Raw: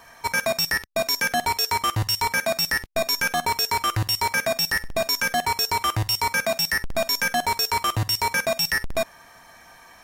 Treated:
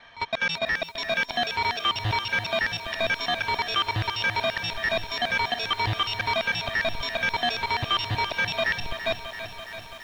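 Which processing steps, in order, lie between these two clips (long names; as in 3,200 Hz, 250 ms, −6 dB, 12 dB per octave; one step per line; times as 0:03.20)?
reversed piece by piece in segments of 163 ms
transistor ladder low-pass 3,800 Hz, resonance 65%
feedback echo at a low word length 335 ms, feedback 80%, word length 9 bits, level −11.5 dB
level +7 dB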